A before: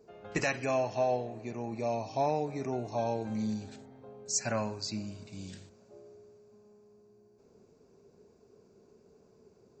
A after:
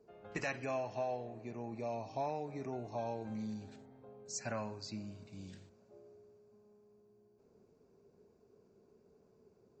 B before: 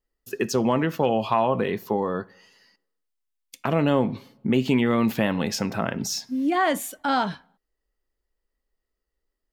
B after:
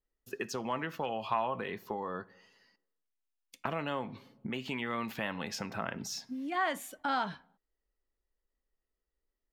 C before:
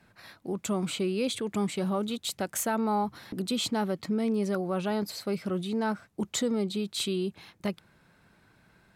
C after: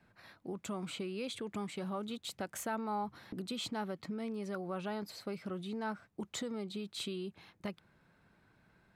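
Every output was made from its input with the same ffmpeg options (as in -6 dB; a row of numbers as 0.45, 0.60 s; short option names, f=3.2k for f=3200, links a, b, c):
-filter_complex "[0:a]highshelf=f=4.1k:g=-8,acrossover=split=830[a][b];[a]acompressor=threshold=-32dB:ratio=6[c];[c][b]amix=inputs=2:normalize=0,volume=-5.5dB"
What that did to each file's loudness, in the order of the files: -8.0, -12.0, -10.0 LU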